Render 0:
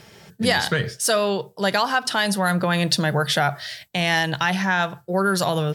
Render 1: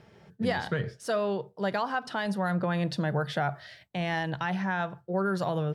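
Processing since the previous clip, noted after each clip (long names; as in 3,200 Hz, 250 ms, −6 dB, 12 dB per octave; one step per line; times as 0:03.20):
low-pass filter 1,100 Hz 6 dB per octave
level −6 dB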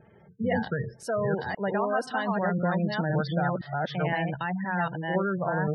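delay that plays each chunk backwards 516 ms, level −1 dB
gate on every frequency bin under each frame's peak −20 dB strong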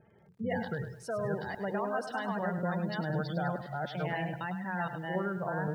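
feedback echo at a low word length 103 ms, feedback 35%, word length 9 bits, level −10 dB
level −6.5 dB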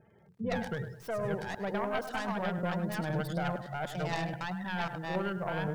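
stylus tracing distortion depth 0.22 ms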